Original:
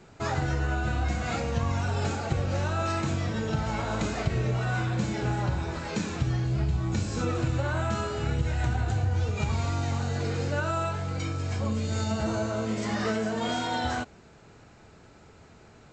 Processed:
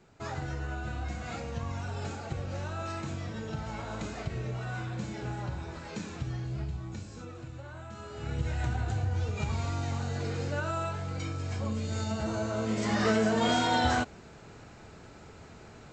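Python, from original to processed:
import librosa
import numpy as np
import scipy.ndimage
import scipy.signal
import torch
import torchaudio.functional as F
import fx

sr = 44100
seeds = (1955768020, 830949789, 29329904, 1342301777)

y = fx.gain(x, sr, db=fx.line((6.61, -8.0), (7.3, -16.0), (7.92, -16.0), (8.42, -4.0), (12.31, -4.0), (13.19, 3.0)))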